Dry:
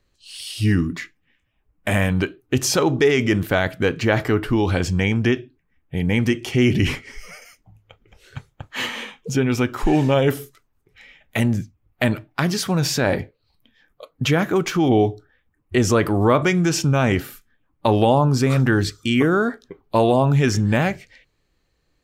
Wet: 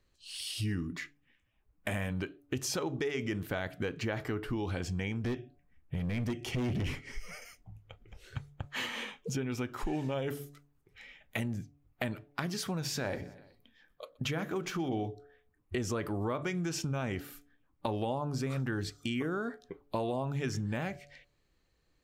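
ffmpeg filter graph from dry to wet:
-filter_complex "[0:a]asettb=1/sr,asplit=3[s0][s1][s2];[s0]atrim=end=5.244[s3];[s1]atrim=start=5.24:end=8.67,asetpts=PTS-STARTPTS,afade=t=in:d=0.004:c=qsin,afade=t=out:st=3.426:d=0.004:c=qsin,lowshelf=f=170:g=7.5,asoftclip=type=hard:threshold=0.188[s4];[s2]atrim=start=8.666[s5];[s3][s4]acrossfade=d=0.004:c1=hsin:c2=qsin[s6];[s6][s5]acrossfade=d=0.004:c1=qsin:c2=hsin,asettb=1/sr,asplit=3[s7][s8][s9];[s7]atrim=end=12.824[s10];[s8]atrim=start=12.82:end=15.06,asetpts=PTS-STARTPTS,afade=t=in:d=0.004:c=qsin,afade=t=out:st=2.236:d=0.004:c=qsin,bandreject=f=60:t=h:w=6,bandreject=f=120:t=h:w=6,bandreject=f=180:t=h:w=6,bandreject=f=240:t=h:w=6,bandreject=f=300:t=h:w=6,bandreject=f=360:t=h:w=6,bandreject=f=420:t=h:w=6,bandreject=f=480:t=h:w=6,bandreject=f=540:t=h:w=6,aecho=1:1:124|248|372:0.0668|0.0321|0.0154,atrim=end_sample=98784[s11];[s9]atrim=start=15.056[s12];[s10][s11]acrossfade=d=0.004:c1=hsin:c2=qsin[s13];[s13][s12]acrossfade=d=0.004:c1=qsin:c2=hsin,bandreject=f=143.6:t=h:w=4,bandreject=f=287.2:t=h:w=4,bandreject=f=430.8:t=h:w=4,bandreject=f=574.4:t=h:w=4,bandreject=f=718:t=h:w=4,acompressor=threshold=0.0355:ratio=3,volume=0.531"

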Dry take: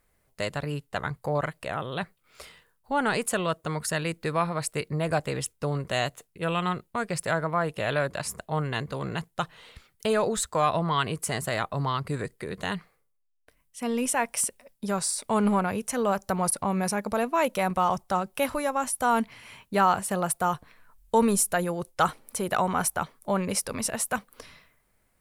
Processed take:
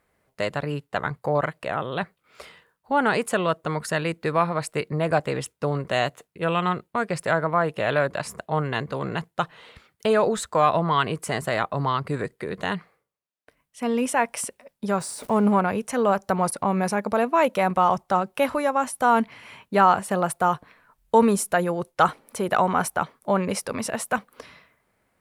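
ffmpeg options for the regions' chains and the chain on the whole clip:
-filter_complex "[0:a]asettb=1/sr,asplit=3[s0][s1][s2];[s0]atrim=end=15.004[s3];[s1]atrim=start=15:end=15.52,asetpts=PTS-STARTPTS,afade=t=in:d=0.004:c=qsin,afade=t=out:st=0.516:d=0.004:c=qsin,aeval=exprs='val(0)+0.5*0.0178*sgn(val(0))':c=same,equalizer=f=2900:w=0.37:g=-7.5[s4];[s2]atrim=start=15.516[s5];[s3][s4]acrossfade=d=0.004:c1=hsin:c2=qsin[s6];[s6][s5]acrossfade=d=0.004:c1=qsin:c2=hsin,highpass=f=170:p=1,highshelf=f=4200:g=-11.5,volume=1.88"

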